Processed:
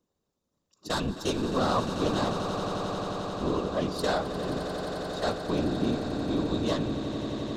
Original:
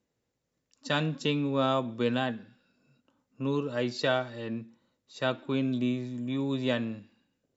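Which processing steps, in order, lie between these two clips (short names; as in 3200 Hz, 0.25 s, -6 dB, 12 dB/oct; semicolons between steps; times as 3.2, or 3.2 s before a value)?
self-modulated delay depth 0.15 ms; bell 2100 Hz -9.5 dB 0.69 oct; small resonant body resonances 1100/3700 Hz, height 8 dB, ringing for 25 ms; whisperiser; swelling echo 88 ms, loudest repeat 8, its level -13 dB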